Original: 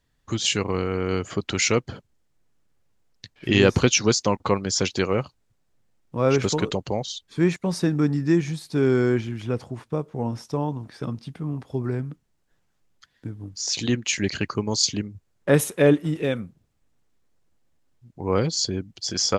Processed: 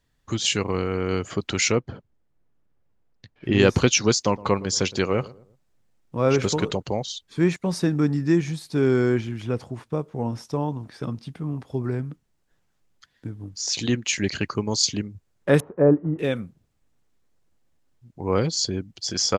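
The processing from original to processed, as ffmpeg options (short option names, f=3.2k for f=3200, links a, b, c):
-filter_complex "[0:a]asplit=3[a][b][c];[a]afade=t=out:st=1.71:d=0.02[d];[b]lowpass=f=1.3k:p=1,afade=t=in:st=1.71:d=0.02,afade=t=out:st=3.58:d=0.02[e];[c]afade=t=in:st=3.58:d=0.02[f];[d][e][f]amix=inputs=3:normalize=0,asplit=3[g][h][i];[g]afade=t=out:st=4.25:d=0.02[j];[h]asplit=2[k][l];[l]adelay=115,lowpass=f=990:p=1,volume=-19dB,asplit=2[m][n];[n]adelay=115,lowpass=f=990:p=1,volume=0.39,asplit=2[o][p];[p]adelay=115,lowpass=f=990:p=1,volume=0.39[q];[k][m][o][q]amix=inputs=4:normalize=0,afade=t=in:st=4.25:d=0.02,afade=t=out:st=6.81:d=0.02[r];[i]afade=t=in:st=6.81:d=0.02[s];[j][r][s]amix=inputs=3:normalize=0,asettb=1/sr,asplit=3[t][u][v];[t]atrim=end=15.604[w];[u]atrim=start=15.6:end=16.19,asetpts=PTS-STARTPTS,afade=t=in:d=0.004:c=qsin,afade=t=out:st=0.586:d=0.004:c=qsin,lowpass=f=1.2k:w=0.5412,lowpass=f=1.2k:w=1.3066[x];[v]atrim=start=16.186[y];[w][x]acrossfade=d=0.004:c1=hsin:c2=qsin[z];[z][y]acrossfade=d=0.004:c1=qsin:c2=hsin"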